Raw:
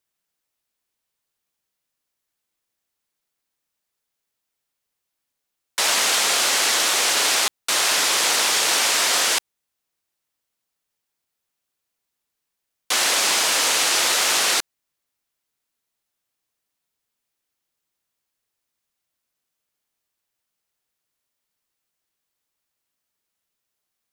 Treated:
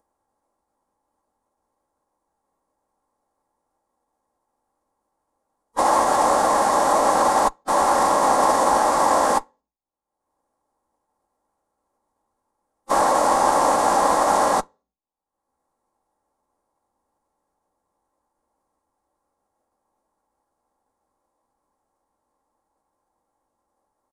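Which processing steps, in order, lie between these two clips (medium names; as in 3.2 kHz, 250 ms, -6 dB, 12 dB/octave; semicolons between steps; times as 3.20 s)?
in parallel at -6 dB: fuzz box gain 41 dB, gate -48 dBFS; on the sum: upward compressor, threshold -24 dBFS; gate -45 dBFS, range -15 dB; treble shelf 2.4 kHz -8.5 dB; comb 2 ms, depth 45%; on a send at -19 dB: reverberation RT60 0.40 s, pre-delay 3 ms; on the sum: waveshaping leveller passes 1; FFT filter 410 Hz 0 dB, 830 Hz +10 dB, 2.7 kHz -22 dB, 9 kHz -7 dB, 14 kHz -14 dB; formant-preserving pitch shift -10.5 st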